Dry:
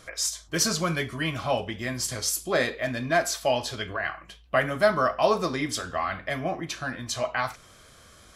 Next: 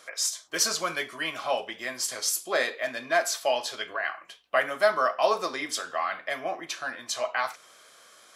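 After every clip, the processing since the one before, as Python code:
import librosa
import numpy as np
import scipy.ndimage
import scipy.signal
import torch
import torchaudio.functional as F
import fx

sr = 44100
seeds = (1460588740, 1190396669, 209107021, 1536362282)

y = scipy.signal.sosfilt(scipy.signal.butter(2, 490.0, 'highpass', fs=sr, output='sos'), x)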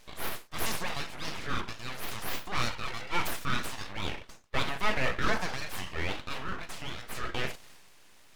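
y = fx.transient(x, sr, attack_db=-5, sustain_db=5)
y = np.abs(y)
y = fx.high_shelf(y, sr, hz=5400.0, db=-6.5)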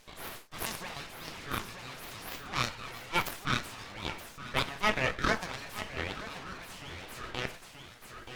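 y = x + 10.0 ** (-7.5 / 20.0) * np.pad(x, (int(928 * sr / 1000.0), 0))[:len(x)]
y = fx.cheby_harmonics(y, sr, harmonics=(2, 8), levels_db=(-13, -20), full_scale_db=-12.0)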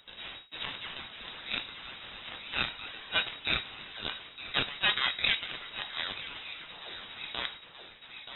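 y = fx.freq_invert(x, sr, carrier_hz=3800)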